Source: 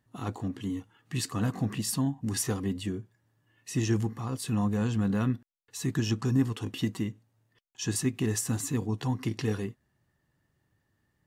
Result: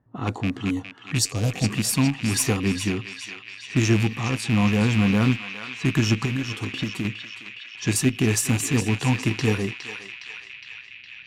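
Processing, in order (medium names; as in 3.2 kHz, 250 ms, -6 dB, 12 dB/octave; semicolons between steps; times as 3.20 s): rattle on loud lows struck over -31 dBFS, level -26 dBFS; level-controlled noise filter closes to 1.1 kHz, open at -27.5 dBFS; Chebyshev shaper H 2 -17 dB, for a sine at -14 dBFS; 1.18–1.64 s: FFT filter 120 Hz 0 dB, 210 Hz -11 dB, 560 Hz +3 dB, 980 Hz -11 dB, 2.5 kHz -11 dB, 5.6 kHz +7 dB, 11 kHz +1 dB; 6.25–7.05 s: compression, threshold -32 dBFS, peak gain reduction 12.5 dB; band-passed feedback delay 412 ms, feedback 80%, band-pass 2.6 kHz, level -5.5 dB; trim +7.5 dB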